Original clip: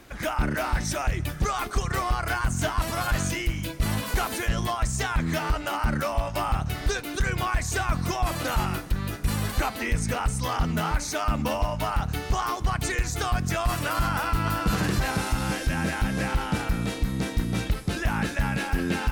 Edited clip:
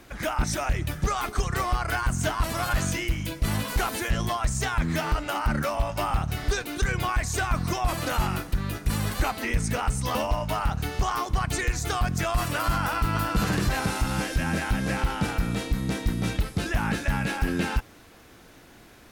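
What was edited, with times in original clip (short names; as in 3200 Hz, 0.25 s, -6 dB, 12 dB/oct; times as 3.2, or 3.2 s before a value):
0.44–0.82 cut
10.53–11.46 cut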